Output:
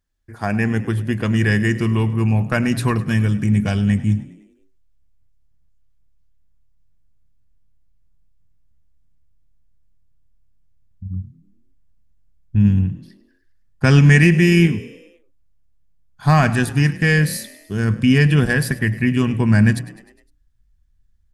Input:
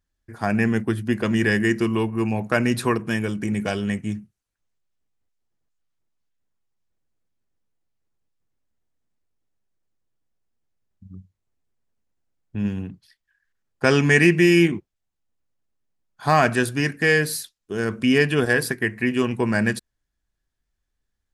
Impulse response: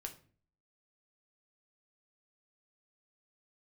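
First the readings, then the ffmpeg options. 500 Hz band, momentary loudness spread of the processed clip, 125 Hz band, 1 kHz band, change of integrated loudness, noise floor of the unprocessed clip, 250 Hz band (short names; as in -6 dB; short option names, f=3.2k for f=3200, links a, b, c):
-2.5 dB, 12 LU, +11.0 dB, 0.0 dB, +4.0 dB, -80 dBFS, +4.0 dB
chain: -filter_complex "[0:a]bandreject=f=60:t=h:w=6,bandreject=f=120:t=h:w=6,asplit=6[a][b][c][d][e][f];[b]adelay=102,afreqshift=35,volume=-17.5dB[g];[c]adelay=204,afreqshift=70,volume=-22.4dB[h];[d]adelay=306,afreqshift=105,volume=-27.3dB[i];[e]adelay=408,afreqshift=140,volume=-32.1dB[j];[f]adelay=510,afreqshift=175,volume=-37dB[k];[a][g][h][i][j][k]amix=inputs=6:normalize=0,asubboost=boost=9:cutoff=140,volume=1dB"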